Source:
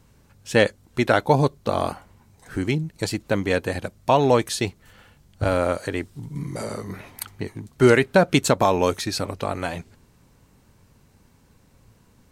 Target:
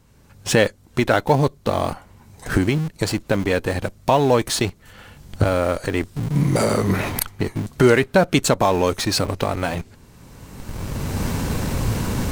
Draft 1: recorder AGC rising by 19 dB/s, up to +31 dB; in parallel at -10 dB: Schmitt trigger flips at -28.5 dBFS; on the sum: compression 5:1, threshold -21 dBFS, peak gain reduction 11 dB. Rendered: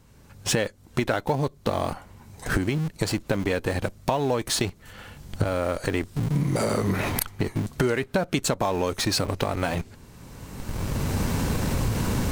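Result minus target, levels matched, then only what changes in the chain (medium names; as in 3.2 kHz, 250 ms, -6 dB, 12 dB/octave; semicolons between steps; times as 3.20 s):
compression: peak gain reduction +11 dB
remove: compression 5:1, threshold -21 dBFS, peak gain reduction 11 dB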